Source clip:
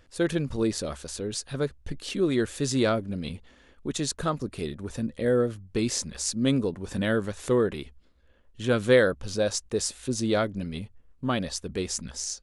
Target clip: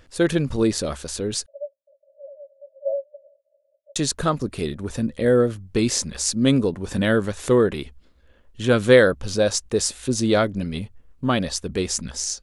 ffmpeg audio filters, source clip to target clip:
-filter_complex "[0:a]asettb=1/sr,asplit=3[a][b][c];[a]atrim=end=1.464[d];[b]atrim=start=1.46:end=3.96,asetpts=PTS-STARTPTS,afade=t=in:d=0.004:c=qsin,afade=t=out:st=2.496:d=0.004:c=qsin,asuperpass=centerf=590:order=12:qfactor=5.7[e];[c]atrim=start=3.956[f];[d][e]acrossfade=d=0.004:c1=hsin:c2=qsin[g];[g][f]acrossfade=d=0.004:c1=qsin:c2=hsin,volume=6dB"

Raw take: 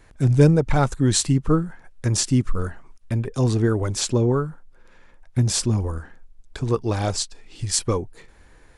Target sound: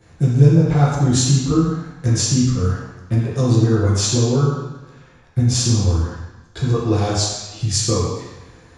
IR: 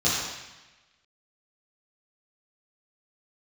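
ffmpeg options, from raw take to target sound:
-filter_complex "[0:a]acompressor=threshold=-22dB:ratio=2.5[a];[1:a]atrim=start_sample=2205[b];[a][b]afir=irnorm=-1:irlink=0,volume=-8.5dB"

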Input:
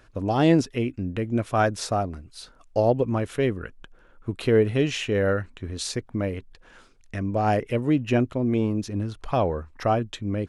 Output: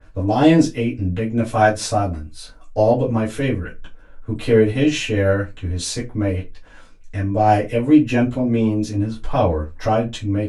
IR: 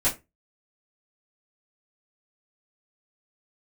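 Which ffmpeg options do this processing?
-filter_complex "[1:a]atrim=start_sample=2205[a];[0:a][a]afir=irnorm=-1:irlink=0,adynamicequalizer=threshold=0.0398:dfrequency=2600:dqfactor=0.7:tfrequency=2600:tqfactor=0.7:attack=5:release=100:ratio=0.375:range=2.5:mode=boostabove:tftype=highshelf,volume=-7.5dB"

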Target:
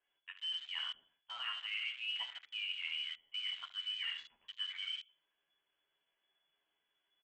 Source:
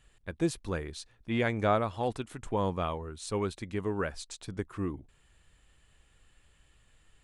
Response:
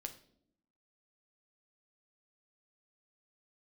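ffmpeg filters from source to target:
-filter_complex "[0:a]acrossover=split=300[a][b];[a]alimiter=level_in=9.5dB:limit=-24dB:level=0:latency=1,volume=-9.5dB[c];[b]asplit=2[d][e];[e]adelay=12,volume=-2.5dB[f];[d][f]amix=inputs=2:normalize=0[g];[c][g]amix=inputs=2:normalize=0,lowshelf=f=260:t=q:w=1.5:g=-10.5[h];[1:a]atrim=start_sample=2205,afade=t=out:st=0.15:d=0.01,atrim=end_sample=7056[i];[h][i]afir=irnorm=-1:irlink=0,lowpass=f=2.9k:t=q:w=0.5098,lowpass=f=2.9k:t=q:w=0.6013,lowpass=f=2.9k:t=q:w=0.9,lowpass=f=2.9k:t=q:w=2.563,afreqshift=-3400,areverse,acompressor=threshold=-40dB:ratio=12,areverse,aecho=1:1:74|161:0.316|0.133,afwtdn=0.00282,volume=2.5dB"

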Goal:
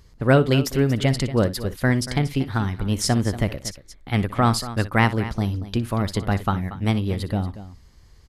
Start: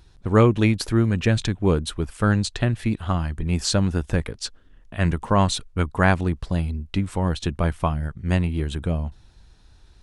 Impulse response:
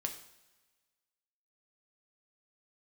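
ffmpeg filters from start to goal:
-af "asetrate=53361,aresample=44100,aecho=1:1:60|234:0.158|0.188"

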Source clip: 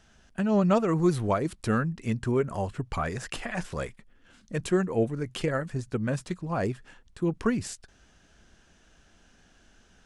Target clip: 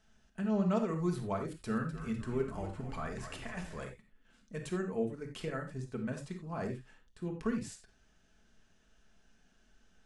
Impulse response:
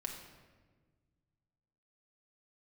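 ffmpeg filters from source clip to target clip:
-filter_complex "[0:a]asettb=1/sr,asplit=3[a][b][c];[a]atrim=end=1.504[d];[b]atrim=start=1.5:end=3.84,asetpts=PTS-STARTPTS,afade=t=in:d=0.004:c=qsin,afade=t=out:st=2.336:d=0.004:c=qsin,asplit=8[e][f][g][h][i][j][k][l];[f]adelay=251,afreqshift=-68,volume=-10dB[m];[g]adelay=502,afreqshift=-136,volume=-14.7dB[n];[h]adelay=753,afreqshift=-204,volume=-19.5dB[o];[i]adelay=1004,afreqshift=-272,volume=-24.2dB[p];[j]adelay=1255,afreqshift=-340,volume=-28.9dB[q];[k]adelay=1506,afreqshift=-408,volume=-33.7dB[r];[l]adelay=1757,afreqshift=-476,volume=-38.4dB[s];[e][m][n][o][p][q][r][s]amix=inputs=8:normalize=0,atrim=end_sample=103194[t];[c]atrim=start=3.836[u];[d][t]acrossfade=d=0.004:c1=hsin:c2=qsin[v];[v][u]acrossfade=d=0.004:c1=qsin:c2=hsin[w];[1:a]atrim=start_sample=2205,atrim=end_sample=4410[x];[w][x]afir=irnorm=-1:irlink=0,volume=-8.5dB"

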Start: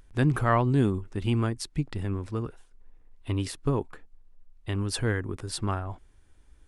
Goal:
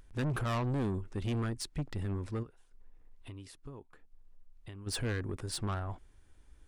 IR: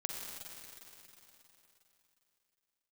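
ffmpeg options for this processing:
-filter_complex "[0:a]asplit=3[a][b][c];[a]afade=t=out:st=2.42:d=0.02[d];[b]acompressor=threshold=-46dB:ratio=4,afade=t=in:st=2.42:d=0.02,afade=t=out:st=4.86:d=0.02[e];[c]afade=t=in:st=4.86:d=0.02[f];[d][e][f]amix=inputs=3:normalize=0,asoftclip=type=tanh:threshold=-27.5dB,volume=-2dB"

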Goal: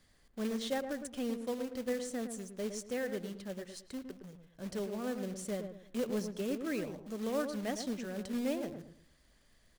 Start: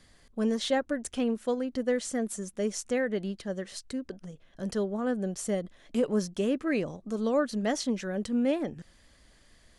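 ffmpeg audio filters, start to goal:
-filter_complex "[0:a]acrusher=bits=3:mode=log:mix=0:aa=0.000001,asplit=2[a][b];[b]adelay=111,lowpass=f=1.1k:p=1,volume=-6.5dB,asplit=2[c][d];[d]adelay=111,lowpass=f=1.1k:p=1,volume=0.33,asplit=2[e][f];[f]adelay=111,lowpass=f=1.1k:p=1,volume=0.33,asplit=2[g][h];[h]adelay=111,lowpass=f=1.1k:p=1,volume=0.33[i];[a][c][e][g][i]amix=inputs=5:normalize=0,volume=-8.5dB"

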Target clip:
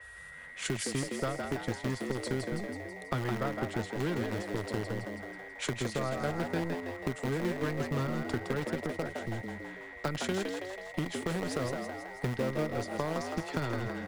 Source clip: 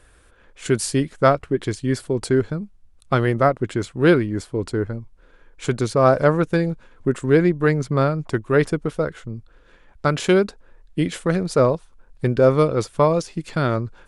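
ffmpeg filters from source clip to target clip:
-filter_complex "[0:a]highpass=75,equalizer=f=260:w=0.75:g=2,acrossover=split=150|3000[a][b][c];[b]acompressor=threshold=-36dB:ratio=1.5[d];[a][d][c]amix=inputs=3:normalize=0,acrossover=split=110|480|5300[e][f][g][h];[f]acrusher=bits=5:dc=4:mix=0:aa=0.000001[i];[e][i][g][h]amix=inputs=4:normalize=0,acompressor=threshold=-34dB:ratio=4,aeval=exprs='val(0)+0.00355*sin(2*PI*1900*n/s)':c=same,asplit=9[j][k][l][m][n][o][p][q][r];[k]adelay=163,afreqshift=92,volume=-5dB[s];[l]adelay=326,afreqshift=184,volume=-9.7dB[t];[m]adelay=489,afreqshift=276,volume=-14.5dB[u];[n]adelay=652,afreqshift=368,volume=-19.2dB[v];[o]adelay=815,afreqshift=460,volume=-23.9dB[w];[p]adelay=978,afreqshift=552,volume=-28.7dB[x];[q]adelay=1141,afreqshift=644,volume=-33.4dB[y];[r]adelay=1304,afreqshift=736,volume=-38.1dB[z];[j][s][t][u][v][w][x][y][z]amix=inputs=9:normalize=0,adynamicequalizer=threshold=0.00178:dfrequency=5300:dqfactor=0.7:tfrequency=5300:tqfactor=0.7:attack=5:release=100:ratio=0.375:range=3:mode=cutabove:tftype=highshelf,volume=1.5dB"

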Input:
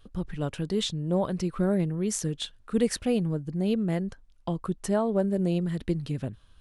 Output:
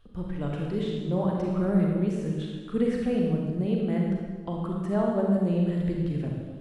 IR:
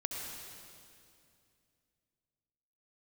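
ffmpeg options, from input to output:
-filter_complex "[0:a]acrossover=split=2500[a][b];[b]acompressor=threshold=-46dB:ratio=4:attack=1:release=60[c];[a][c]amix=inputs=2:normalize=0,bass=f=250:g=0,treble=f=4k:g=-7[d];[1:a]atrim=start_sample=2205,asetrate=79380,aresample=44100[e];[d][e]afir=irnorm=-1:irlink=0,volume=3.5dB"

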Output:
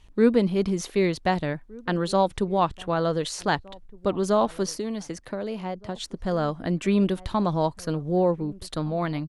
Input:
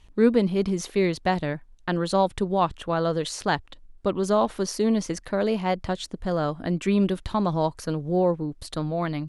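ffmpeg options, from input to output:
-filter_complex "[0:a]asplit=2[a][b];[b]adelay=1516,volume=-23dB,highshelf=f=4k:g=-34.1[c];[a][c]amix=inputs=2:normalize=0,asettb=1/sr,asplit=3[d][e][f];[d]atrim=end=4.744[g];[e]atrim=start=4.74:end=5.96,asetpts=PTS-STARTPTS,afade=t=in:d=0.004:c=qsin,afade=t=out:st=1.216:d=0.004:c=qsin,acrossover=split=100|750[h][i][j];[h]acompressor=threshold=-54dB:ratio=4[k];[i]acompressor=threshold=-30dB:ratio=4[l];[j]acompressor=threshold=-41dB:ratio=4[m];[k][l][m]amix=inputs=3:normalize=0[n];[f]atrim=start=5.956[o];[g][n]acrossfade=d=0.004:c1=hsin:c2=qsin[p];[p][o]acrossfade=d=0.004:c1=qsin:c2=hsin"

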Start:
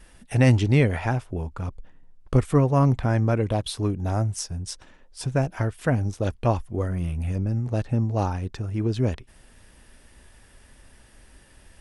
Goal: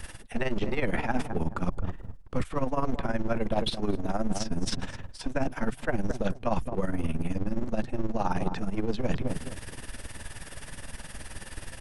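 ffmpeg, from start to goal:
-filter_complex "[0:a]asplit=2[a][b];[b]adelay=223,lowpass=f=900:p=1,volume=-13dB,asplit=2[c][d];[d]adelay=223,lowpass=f=900:p=1,volume=0.3,asplit=2[e][f];[f]adelay=223,lowpass=f=900:p=1,volume=0.3[g];[a][c][e][g]amix=inputs=4:normalize=0,acrossover=split=4100[h][i];[i]acompressor=threshold=-52dB:ratio=4:attack=1:release=60[j];[h][j]amix=inputs=2:normalize=0,apsyclip=15dB,acrossover=split=350|1300[k][l][m];[k]aeval=exprs='abs(val(0))':c=same[n];[n][l][m]amix=inputs=3:normalize=0,tremolo=f=19:d=0.72,areverse,acompressor=threshold=-22dB:ratio=12,areverse"

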